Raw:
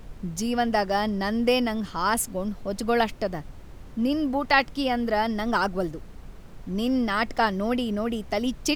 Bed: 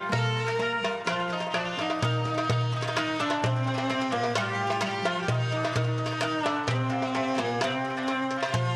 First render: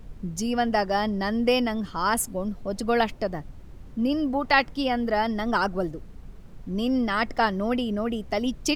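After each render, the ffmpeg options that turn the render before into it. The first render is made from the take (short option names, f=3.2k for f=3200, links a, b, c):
-af "afftdn=nr=6:nf=-44"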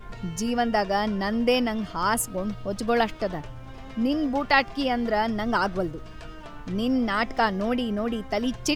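-filter_complex "[1:a]volume=-16.5dB[a];[0:a][a]amix=inputs=2:normalize=0"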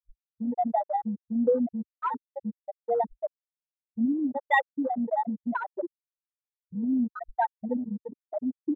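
-af "afftfilt=real='re*gte(hypot(re,im),0.501)':imag='im*gte(hypot(re,im),0.501)':win_size=1024:overlap=0.75,afwtdn=0.0158"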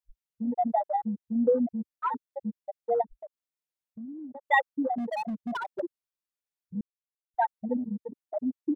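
-filter_complex "[0:a]asplit=3[a][b][c];[a]afade=t=out:st=3.01:d=0.02[d];[b]acompressor=threshold=-41dB:ratio=4:attack=3.2:release=140:knee=1:detection=peak,afade=t=in:st=3.01:d=0.02,afade=t=out:st=4.44:d=0.02[e];[c]afade=t=in:st=4.44:d=0.02[f];[d][e][f]amix=inputs=3:normalize=0,asettb=1/sr,asplit=3[g][h][i];[g]atrim=end=4.984[j];[h]atrim=start=4.98:end=5.8,asetpts=PTS-STARTPTS,afade=t=in:d=0.004:c=qsin,afade=t=out:st=0.816:d=0.004:c=qsin,volume=29dB,asoftclip=hard,volume=-29dB[k];[i]atrim=start=5.796[l];[j][k]acrossfade=d=0.004:c1=hsin:c2=qsin[m];[m][l]acrossfade=d=0.004:c1=qsin:c2=hsin,asplit=3[n][o][p];[n]atrim=end=6.81,asetpts=PTS-STARTPTS,afade=t=out:st=6.806:d=0.004:c=hsin[q];[o]atrim=start=6.81:end=7.34,asetpts=PTS-STARTPTS,volume=0[r];[p]atrim=start=7.34,asetpts=PTS-STARTPTS,afade=t=in:d=0.004:c=hsin[s];[q][r][s]concat=n=3:v=0:a=1"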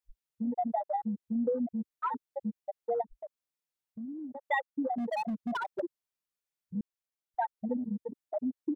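-af "acompressor=threshold=-30dB:ratio=2.5"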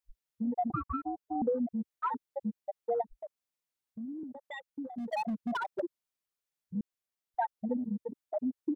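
-filter_complex "[0:a]asettb=1/sr,asplit=3[a][b][c];[a]atrim=end=0.704[d];[b]atrim=start=0.7:end=1.42,asetpts=PTS-STARTPTS,afade=t=in:d=0.004:c=qsin,afade=t=out:st=0.716:d=0.004:c=qsin,aeval=exprs='val(0)*sin(2*PI*530*n/s)':c=same[e];[c]atrim=start=1.416[f];[d][e]acrossfade=d=0.004:c1=hsin:c2=qsin[g];[g][f]acrossfade=d=0.004:c1=qsin:c2=hsin,asettb=1/sr,asplit=3[h][i][j];[h]atrim=end=4.234[k];[i]atrim=start=4.23:end=5.13,asetpts=PTS-STARTPTS,afade=t=in:d=0.004:c=qsin,afade=t=out:st=0.896:d=0.004:c=qsin,acrossover=split=220|3000[l][m][n];[m]acompressor=threshold=-43dB:ratio=10:attack=3.2:release=140:knee=2.83:detection=peak[o];[l][o][n]amix=inputs=3:normalize=0[p];[j]atrim=start=5.126[q];[k][p]acrossfade=d=0.004:c1=hsin:c2=qsin[r];[r][q]acrossfade=d=0.004:c1=qsin:c2=hsin"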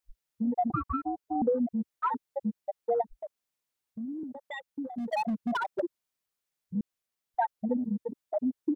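-af "volume=3.5dB"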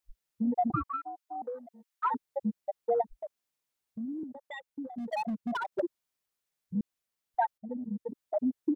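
-filter_complex "[0:a]asettb=1/sr,asplit=3[a][b][c];[a]atrim=end=0.894[d];[b]atrim=start=0.89:end=2.05,asetpts=PTS-STARTPTS,afade=t=in:d=0.004:c=qsin,afade=t=out:st=1.156:d=0.004:c=qsin,highpass=940[e];[c]atrim=start=2.046[f];[d][e]acrossfade=d=0.004:c1=hsin:c2=qsin[g];[g][f]acrossfade=d=0.004:c1=qsin:c2=hsin,asplit=4[h][i][j][k];[h]atrim=end=4.242[l];[i]atrim=start=4.238:end=5.722,asetpts=PTS-STARTPTS,volume=-3dB[m];[j]atrim=start=5.718:end=7.58,asetpts=PTS-STARTPTS,afade=t=out:st=1.858:d=0.004:c=hsin:silence=0.188365[n];[k]atrim=start=7.58,asetpts=PTS-STARTPTS,afade=t=in:d=0.68:silence=0.188365[o];[l][m]acrossfade=d=0.004:c1=hsin:c2=hsin[p];[n][o]concat=n=2:v=0:a=1[q];[p][q]acrossfade=d=0.004:c1=hsin:c2=hsin"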